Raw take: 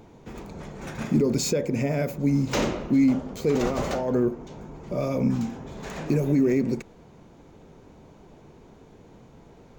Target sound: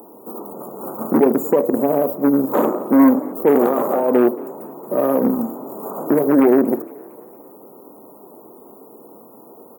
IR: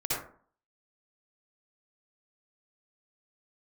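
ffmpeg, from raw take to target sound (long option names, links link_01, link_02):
-filter_complex "[0:a]aexciter=amount=9.8:drive=8.7:freq=11000,acrossover=split=5300[link_01][link_02];[link_02]acompressor=threshold=-41dB:ratio=4:attack=1:release=60[link_03];[link_01][link_03]amix=inputs=2:normalize=0,asuperstop=centerf=3200:order=20:qfactor=0.53,asplit=2[link_04][link_05];[1:a]atrim=start_sample=2205,atrim=end_sample=4410[link_06];[link_05][link_06]afir=irnorm=-1:irlink=0,volume=-22dB[link_07];[link_04][link_07]amix=inputs=2:normalize=0,aeval=exprs='0.299*(cos(1*acos(clip(val(0)/0.299,-1,1)))-cos(1*PI/2))+0.0596*(cos(6*acos(clip(val(0)/0.299,-1,1)))-cos(6*PI/2))+0.0335*(cos(8*acos(clip(val(0)/0.299,-1,1)))-cos(8*PI/2))':channel_layout=same,highpass=frequency=250:width=0.5412,highpass=frequency=250:width=1.3066,asplit=5[link_08][link_09][link_10][link_11][link_12];[link_09]adelay=229,afreqshift=32,volume=-22dB[link_13];[link_10]adelay=458,afreqshift=64,volume=-27.7dB[link_14];[link_11]adelay=687,afreqshift=96,volume=-33.4dB[link_15];[link_12]adelay=916,afreqshift=128,volume=-39dB[link_16];[link_08][link_13][link_14][link_15][link_16]amix=inputs=5:normalize=0,volume=9dB"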